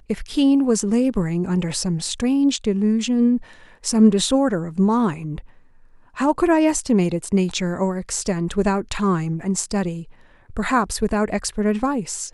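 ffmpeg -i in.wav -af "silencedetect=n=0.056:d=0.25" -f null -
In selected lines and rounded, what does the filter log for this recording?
silence_start: 3.37
silence_end: 3.86 | silence_duration: 0.48
silence_start: 5.38
silence_end: 6.19 | silence_duration: 0.80
silence_start: 10.00
silence_end: 10.57 | silence_duration: 0.56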